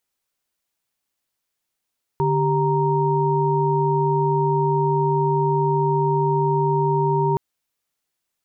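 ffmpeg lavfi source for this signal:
-f lavfi -i "aevalsrc='0.0891*(sin(2*PI*146.83*t)+sin(2*PI*392*t)+sin(2*PI*932.33*t))':d=5.17:s=44100"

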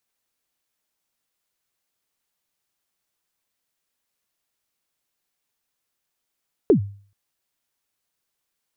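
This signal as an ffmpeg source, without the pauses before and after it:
-f lavfi -i "aevalsrc='0.398*pow(10,-3*t/0.45)*sin(2*PI*(470*0.1/log(100/470)*(exp(log(100/470)*min(t,0.1)/0.1)-1)+100*max(t-0.1,0)))':d=0.43:s=44100"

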